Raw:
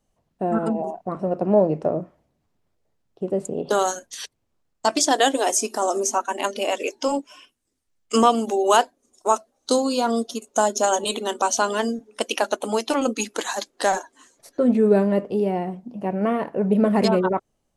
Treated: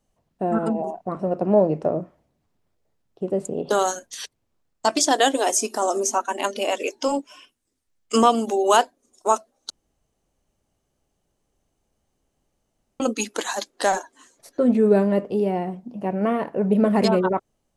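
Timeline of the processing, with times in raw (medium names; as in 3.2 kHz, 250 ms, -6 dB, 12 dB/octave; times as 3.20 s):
9.70–13.00 s: room tone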